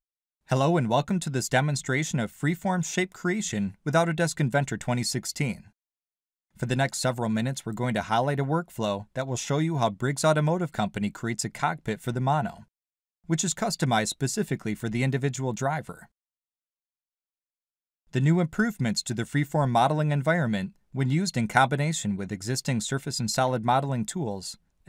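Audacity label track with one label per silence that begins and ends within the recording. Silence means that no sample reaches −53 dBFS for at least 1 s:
16.060000	18.130000	silence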